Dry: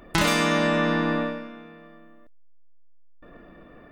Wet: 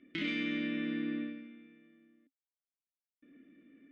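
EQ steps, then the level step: vowel filter i; LPF 4100 Hz 12 dB/oct; low shelf 160 Hz -5 dB; 0.0 dB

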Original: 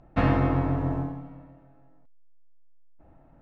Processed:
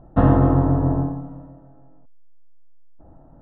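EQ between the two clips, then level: running mean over 19 samples; air absorption 56 m; +8.0 dB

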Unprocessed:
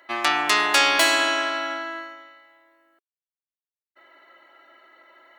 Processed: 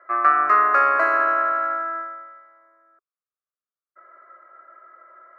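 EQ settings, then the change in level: HPF 110 Hz; synth low-pass 1200 Hz, resonance Q 4.7; fixed phaser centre 900 Hz, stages 6; 0.0 dB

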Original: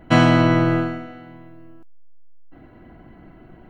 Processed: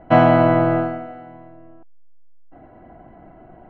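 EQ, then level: LPF 2300 Hz 12 dB/oct; bell 700 Hz +11.5 dB 0.91 oct; -2.5 dB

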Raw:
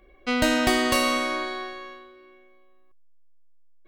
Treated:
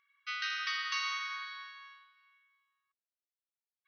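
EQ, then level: brick-wall FIR band-pass 1100–6200 Hz; -9.0 dB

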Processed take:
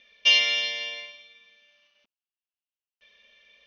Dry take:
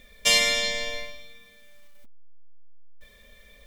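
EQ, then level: HPF 610 Hz 6 dB/oct; Chebyshev low-pass 6300 Hz, order 10; bell 2800 Hz +15 dB 0.41 oct; -6.0 dB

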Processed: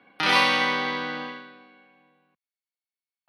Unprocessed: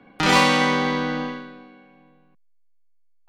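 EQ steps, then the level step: running mean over 6 samples; HPF 53 Hz; tilt +3.5 dB/oct; -3.5 dB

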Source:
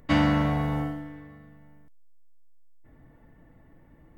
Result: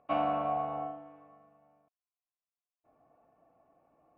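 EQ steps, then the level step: vowel filter a; air absorption 360 m; +7.0 dB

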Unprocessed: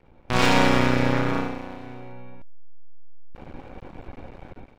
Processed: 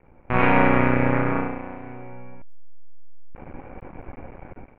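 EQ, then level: elliptic low-pass 2400 Hz, stop band 80 dB; +2.0 dB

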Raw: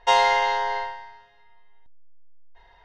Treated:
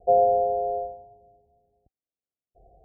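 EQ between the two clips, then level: HPF 52 Hz; Chebyshev low-pass 770 Hz, order 10; air absorption 480 m; +8.0 dB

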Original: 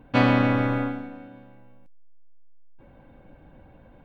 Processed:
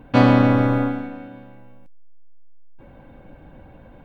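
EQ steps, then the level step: dynamic EQ 2300 Hz, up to -7 dB, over -40 dBFS, Q 0.92; +6.0 dB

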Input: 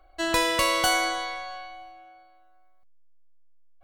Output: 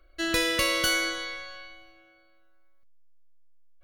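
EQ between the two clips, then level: Butterworth band-stop 840 Hz, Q 1.3; notch 7900 Hz, Q 5.4; 0.0 dB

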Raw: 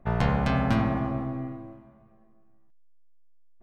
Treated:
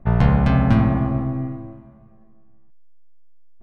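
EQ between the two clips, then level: tone controls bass +7 dB, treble -2 dB; high shelf 4400 Hz -6 dB; +3.5 dB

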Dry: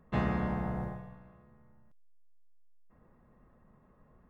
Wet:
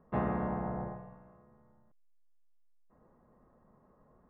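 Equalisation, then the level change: LPF 1100 Hz 12 dB/oct; low shelf 220 Hz -10.5 dB; +3.5 dB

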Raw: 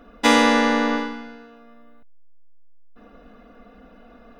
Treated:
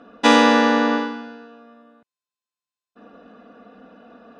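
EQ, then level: HPF 160 Hz 12 dB/oct; air absorption 66 m; notch 2100 Hz, Q 12; +3.0 dB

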